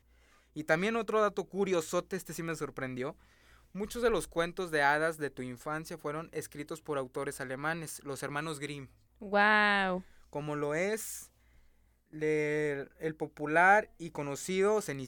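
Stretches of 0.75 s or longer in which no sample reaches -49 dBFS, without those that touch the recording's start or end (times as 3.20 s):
11.26–12.13 s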